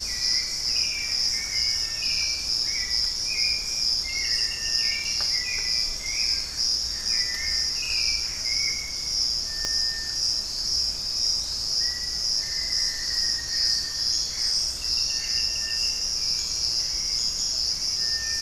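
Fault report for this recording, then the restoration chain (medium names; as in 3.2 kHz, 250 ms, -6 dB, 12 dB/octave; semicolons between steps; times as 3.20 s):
9.65 s: pop -14 dBFS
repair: de-click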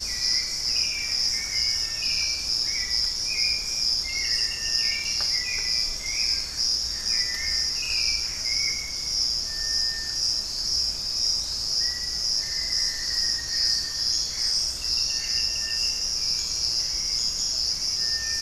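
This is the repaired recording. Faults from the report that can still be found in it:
9.65 s: pop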